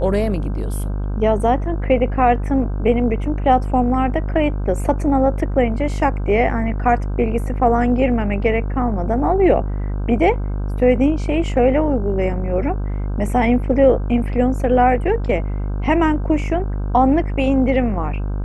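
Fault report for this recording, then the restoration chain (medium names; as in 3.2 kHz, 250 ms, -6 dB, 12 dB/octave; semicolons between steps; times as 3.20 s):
buzz 50 Hz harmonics 32 -22 dBFS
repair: de-hum 50 Hz, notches 32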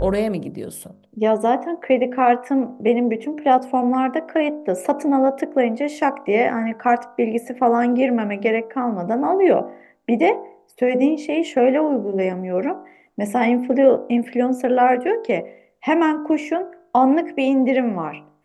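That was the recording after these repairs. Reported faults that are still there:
nothing left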